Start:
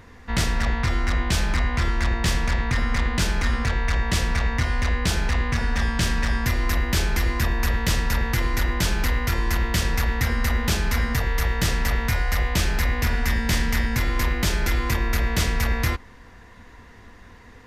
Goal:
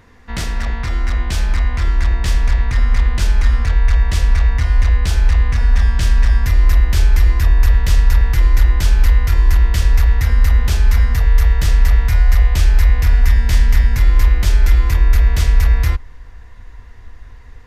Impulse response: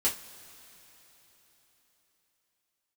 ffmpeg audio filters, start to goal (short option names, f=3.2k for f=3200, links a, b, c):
-af "asubboost=boost=7.5:cutoff=67,volume=-1dB"